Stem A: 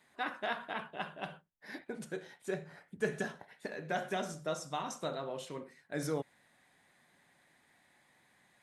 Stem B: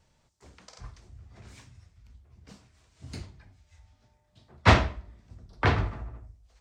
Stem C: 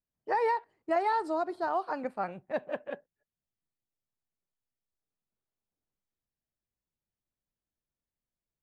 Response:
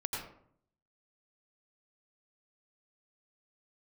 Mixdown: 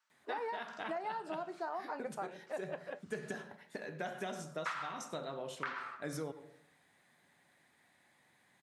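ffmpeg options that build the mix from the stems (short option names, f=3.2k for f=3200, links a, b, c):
-filter_complex "[0:a]highpass=47,adelay=100,volume=-3dB,asplit=2[a][b];[b]volume=-15dB[c];[1:a]highpass=f=1.3k:t=q:w=3.5,volume=-15.5dB,asplit=2[d][e];[e]volume=-5dB[f];[2:a]highpass=320,flanger=delay=8.6:depth=7.4:regen=-69:speed=0.32:shape=triangular,volume=0.5dB[g];[3:a]atrim=start_sample=2205[h];[c][f]amix=inputs=2:normalize=0[i];[i][h]afir=irnorm=-1:irlink=0[j];[a][d][g][j]amix=inputs=4:normalize=0,acompressor=threshold=-36dB:ratio=8"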